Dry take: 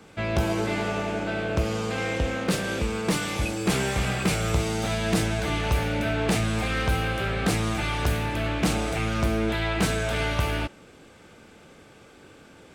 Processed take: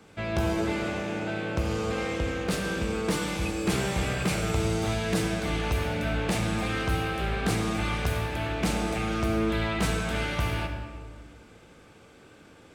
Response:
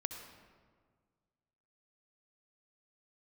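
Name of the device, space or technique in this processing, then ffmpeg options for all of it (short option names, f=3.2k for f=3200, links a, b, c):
stairwell: -filter_complex "[1:a]atrim=start_sample=2205[a];[0:a][a]afir=irnorm=-1:irlink=0,volume=-2.5dB"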